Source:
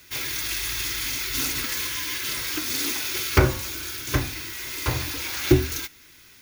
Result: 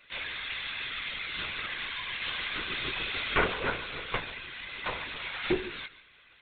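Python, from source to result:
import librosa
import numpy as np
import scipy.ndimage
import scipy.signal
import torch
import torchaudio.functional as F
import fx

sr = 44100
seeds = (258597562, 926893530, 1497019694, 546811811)

y = fx.reverse_delay_fb(x, sr, ms=150, feedback_pct=51, wet_db=-2.5, at=(2.05, 4.19))
y = scipy.signal.sosfilt(scipy.signal.butter(2, 480.0, 'highpass', fs=sr, output='sos'), y)
y = y + 10.0 ** (-16.0 / 20.0) * np.pad(y, (int(142 * sr / 1000.0), 0))[:len(y)]
y = fx.lpc_vocoder(y, sr, seeds[0], excitation='whisper', order=16)
y = y * 10.0 ** (-3.0 / 20.0)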